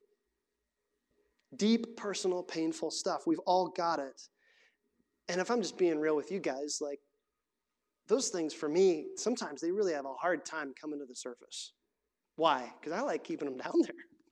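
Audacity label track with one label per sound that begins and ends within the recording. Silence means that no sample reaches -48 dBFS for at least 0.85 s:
1.520000	4.250000	sound
5.280000	6.950000	sound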